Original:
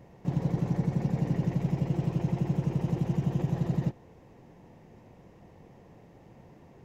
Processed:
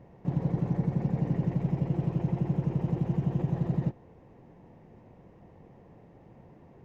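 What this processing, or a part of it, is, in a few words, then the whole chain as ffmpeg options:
through cloth: -af "highshelf=f=3500:g=-14.5"

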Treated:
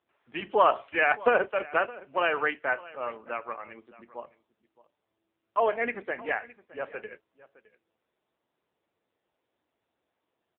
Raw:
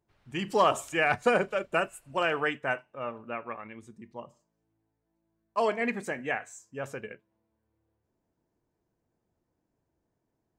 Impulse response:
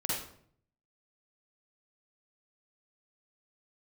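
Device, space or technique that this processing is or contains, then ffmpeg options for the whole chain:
satellite phone: -filter_complex "[0:a]asettb=1/sr,asplit=3[s0][s1][s2];[s0]atrim=end=5.664[s3];[s1]atrim=start=5.66:end=6.76,asetpts=PTS-STARTPTS,afade=t=in:d=0.004:c=qsin,afade=t=out:st=1.096:d=0.004:c=qsin,adynamicequalizer=threshold=0.00112:dfrequency=9500:dqfactor=1.2:tfrequency=9500:tqfactor=1.2:attack=5:release=100:ratio=0.375:range=2:mode=cutabove:tftype=bell[s4];[s2]atrim=start=6.756[s5];[s3][s4]acrossfade=d=0.004:c1=hsin:c2=qsin[s6];[s6][s5]acrossfade=d=0.004:c1=qsin:c2=hsin,highpass=390,lowpass=3300,aecho=1:1:615:0.1,volume=1.5" -ar 8000 -c:a libopencore_amrnb -b:a 6700

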